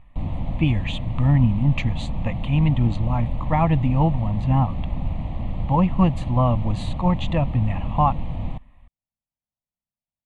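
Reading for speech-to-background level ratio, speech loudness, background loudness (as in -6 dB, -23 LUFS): 7.5 dB, -22.5 LUFS, -30.0 LUFS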